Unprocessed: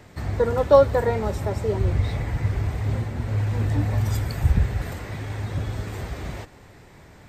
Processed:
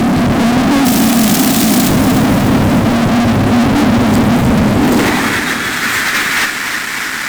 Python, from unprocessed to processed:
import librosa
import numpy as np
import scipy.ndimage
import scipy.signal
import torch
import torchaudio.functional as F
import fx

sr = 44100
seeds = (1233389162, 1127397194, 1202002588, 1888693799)

p1 = fx.spec_flatten(x, sr, power=0.14, at=(0.84, 1.88), fade=0.02)
p2 = fx.low_shelf_res(p1, sr, hz=380.0, db=13.5, q=3.0)
p3 = fx.over_compress(p2, sr, threshold_db=-23.0, ratio=-1.0)
p4 = p2 + (p3 * librosa.db_to_amplitude(2.0))
p5 = fx.filter_sweep_highpass(p4, sr, from_hz=220.0, to_hz=1500.0, start_s=4.71, end_s=5.36, q=2.1)
p6 = fx.fuzz(p5, sr, gain_db=34.0, gate_db=-42.0)
p7 = p6 + fx.echo_feedback(p6, sr, ms=301, feedback_pct=56, wet_db=-9, dry=0)
y = p7 * librosa.db_to_amplitude(3.0)